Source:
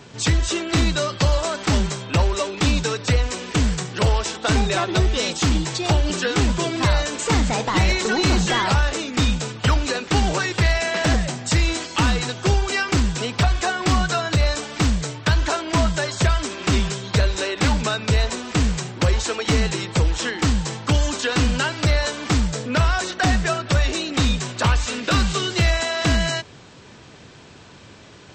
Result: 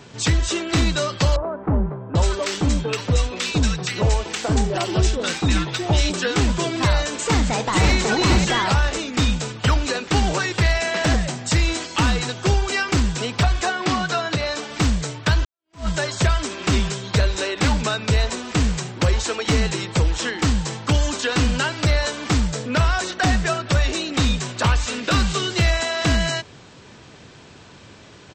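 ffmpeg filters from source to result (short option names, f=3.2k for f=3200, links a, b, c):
-filter_complex "[0:a]asettb=1/sr,asplit=3[a][b][c];[a]atrim=end=1.364[d];[b]atrim=start=1.36:end=6.14,asetpts=PTS-STARTPTS,afade=t=in:d=0.004:c=qsin,afade=t=out:st=4.776:d=0.004:c=qsin,acrossover=split=1200[e][f];[f]adelay=790[g];[e][g]amix=inputs=2:normalize=0,atrim=end_sample=210798[h];[c]atrim=start=6.136[i];[d][h]acrossfade=d=0.004:c1=hsin:c2=qsin[j];[j][i]acrossfade=d=0.004:c1=qsin:c2=hsin,asplit=2[k][l];[l]afade=t=in:st=7.18:d=0.01,afade=t=out:st=7.9:d=0.01,aecho=0:1:540|1080|1620:0.668344|0.100252|0.0150377[m];[k][m]amix=inputs=2:normalize=0,asettb=1/sr,asplit=3[n][o][p];[n]atrim=end=13.694[q];[o]atrim=start=13.69:end=14.71,asetpts=PTS-STARTPTS,afade=t=in:d=0.004:c=qsin,afade=t=out:st=1.016:d=0.004:c=qsin,highpass=150,lowpass=6.2k[r];[p]atrim=start=14.706[s];[q][r]acrossfade=d=0.004:c1=hsin:c2=qsin[t];[t][s]acrossfade=d=0.004:c1=qsin:c2=hsin,asplit=2[u][v];[u]atrim=end=15.45,asetpts=PTS-STARTPTS,afade=t=out:st=15.446:d=0.004:c=hsin[w];[v]atrim=start=15.45,asetpts=PTS-STARTPTS,afade=t=in:d=0.43:c=exp[x];[w][x]concat=n=2:v=0:a=1"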